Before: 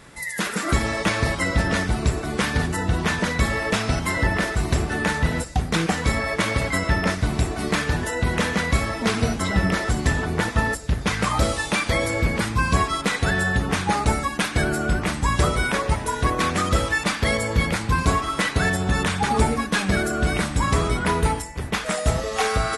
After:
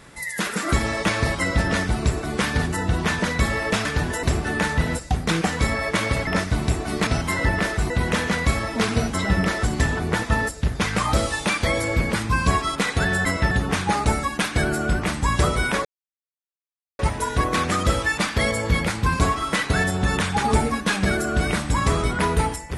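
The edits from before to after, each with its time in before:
3.85–4.68 s: swap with 7.78–8.16 s
6.72–6.98 s: move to 13.51 s
15.85 s: insert silence 1.14 s

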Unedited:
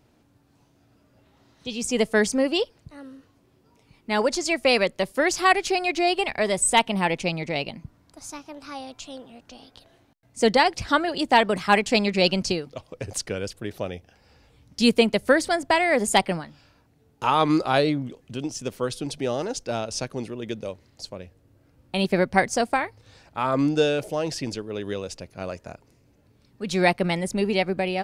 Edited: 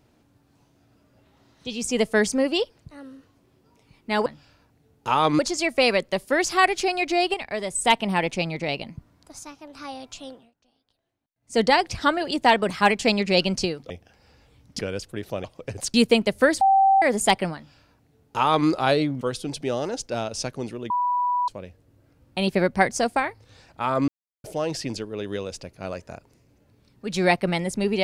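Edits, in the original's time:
6.21–6.72 s: gain -5.5 dB
8.26–8.60 s: gain -3 dB
9.15–10.50 s: dip -22 dB, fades 0.23 s
12.77–13.27 s: swap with 13.92–14.81 s
15.48–15.89 s: bleep 777 Hz -13.5 dBFS
16.42–17.55 s: copy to 4.26 s
18.08–18.78 s: delete
20.47–21.05 s: bleep 983 Hz -20 dBFS
23.65–24.01 s: mute

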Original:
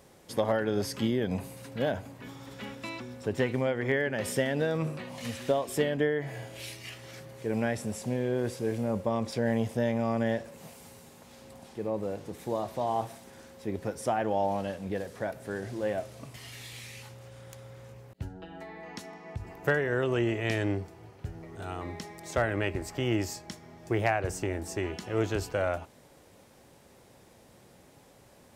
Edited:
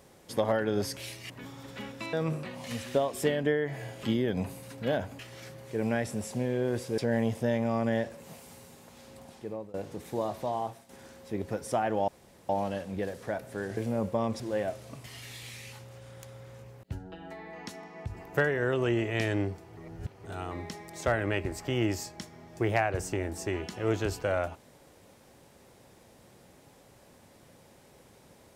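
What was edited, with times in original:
0.97–2.13 s: swap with 6.57–6.90 s
2.96–4.67 s: delete
8.69–9.32 s: move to 15.70 s
11.49–12.08 s: fade out equal-power, to -22.5 dB
12.73–13.23 s: fade out, to -11.5 dB
14.42 s: insert room tone 0.41 s
21.07–21.54 s: reverse

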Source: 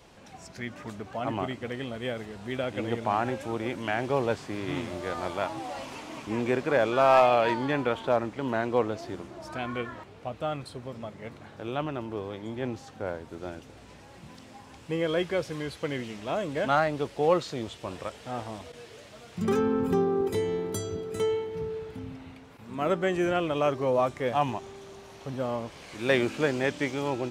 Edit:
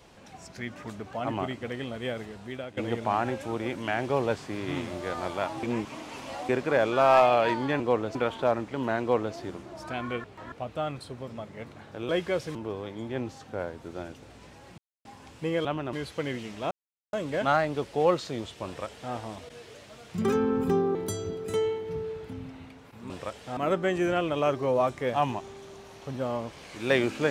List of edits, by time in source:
2.24–2.77 s: fade out, to -12 dB
5.63–6.49 s: reverse
8.66–9.01 s: copy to 7.80 s
9.89–10.17 s: reverse
11.74–12.02 s: swap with 15.12–15.58 s
14.25–14.52 s: mute
16.36 s: insert silence 0.42 s
17.89–18.36 s: copy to 22.76 s
20.18–20.61 s: delete

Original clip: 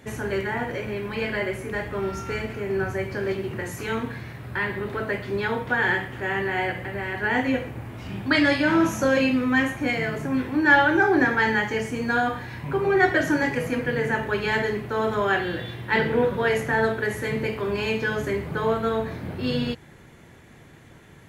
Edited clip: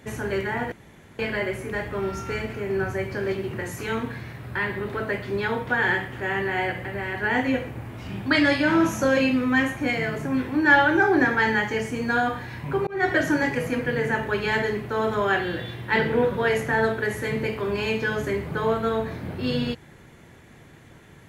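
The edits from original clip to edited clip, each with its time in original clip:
0.72–1.19 s: room tone
12.87–13.13 s: fade in

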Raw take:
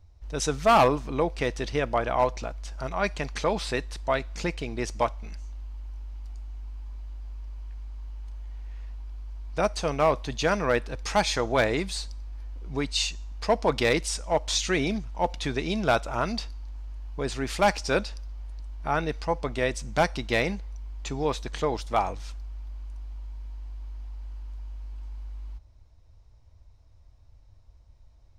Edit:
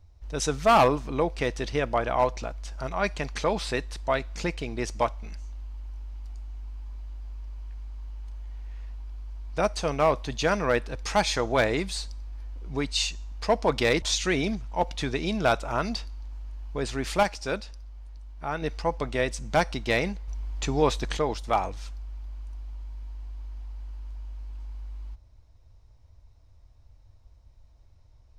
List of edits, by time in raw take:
14.02–14.45 s: delete
17.66–19.05 s: gain -5 dB
20.71–21.60 s: gain +4.5 dB

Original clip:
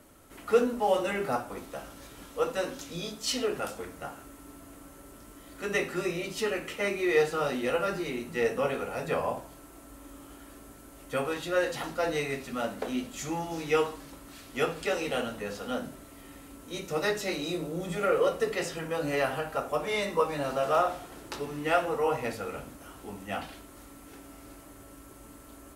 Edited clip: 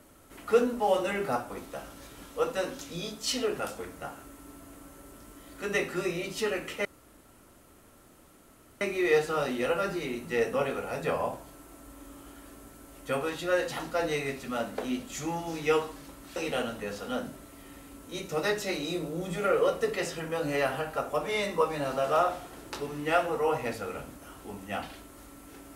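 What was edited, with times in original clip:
6.85 s: insert room tone 1.96 s
14.40–14.95 s: delete

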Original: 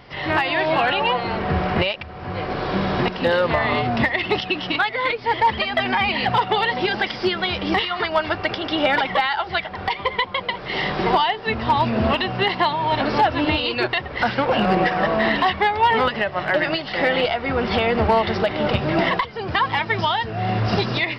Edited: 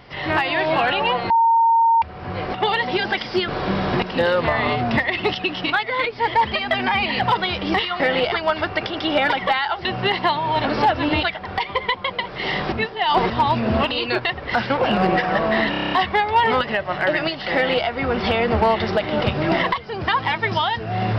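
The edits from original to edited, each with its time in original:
1.30–2.02 s: bleep 916 Hz -12 dBFS
6.43–7.37 s: move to 2.54 s
11.02–11.60 s: reverse
12.21–13.59 s: move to 9.53 s
15.39 s: stutter 0.03 s, 8 plays
17.01–17.33 s: copy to 8.00 s

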